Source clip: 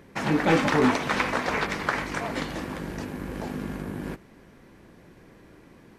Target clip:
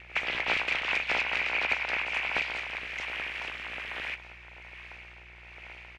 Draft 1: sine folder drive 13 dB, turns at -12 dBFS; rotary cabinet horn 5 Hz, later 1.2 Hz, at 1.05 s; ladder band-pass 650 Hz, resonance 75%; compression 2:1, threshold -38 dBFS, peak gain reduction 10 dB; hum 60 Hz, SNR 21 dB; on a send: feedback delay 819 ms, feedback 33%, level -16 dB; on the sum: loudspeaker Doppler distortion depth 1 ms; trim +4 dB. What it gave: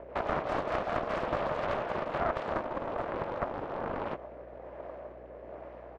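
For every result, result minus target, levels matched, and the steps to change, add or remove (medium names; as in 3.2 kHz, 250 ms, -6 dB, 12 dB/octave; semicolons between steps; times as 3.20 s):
500 Hz band +15.0 dB; sine folder: distortion +9 dB
change: ladder band-pass 2.3 kHz, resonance 75%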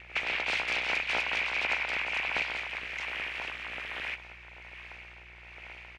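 sine folder: distortion +9 dB
change: sine folder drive 13 dB, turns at -6 dBFS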